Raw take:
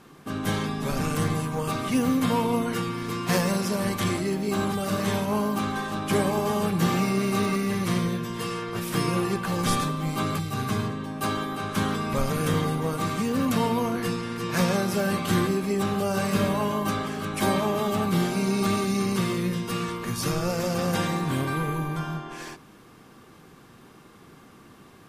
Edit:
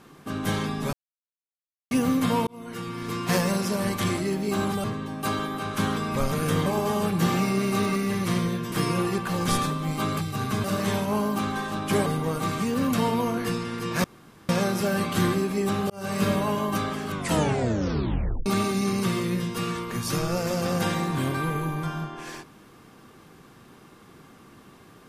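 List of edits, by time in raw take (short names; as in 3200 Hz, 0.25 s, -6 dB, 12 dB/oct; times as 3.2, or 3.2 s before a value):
0.93–1.91 mute
2.47–3.15 fade in
4.84–6.26 swap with 10.82–12.64
8.32–8.9 cut
14.62 insert room tone 0.45 s
16.03–16.33 fade in
17.22 tape stop 1.37 s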